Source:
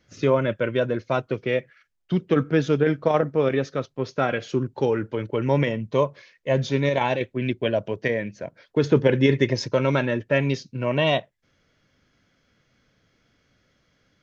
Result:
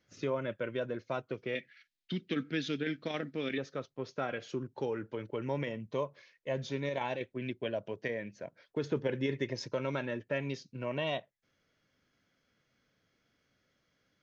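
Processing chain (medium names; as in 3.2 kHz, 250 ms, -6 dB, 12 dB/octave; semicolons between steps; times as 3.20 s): 1.55–3.58 s: graphic EQ 125/250/500/1000/2000/4000 Hz -5/+7/-6/-10/+7/+12 dB; compression 1.5:1, threshold -26 dBFS, peak gain reduction 5.5 dB; bass shelf 110 Hz -8 dB; trim -9 dB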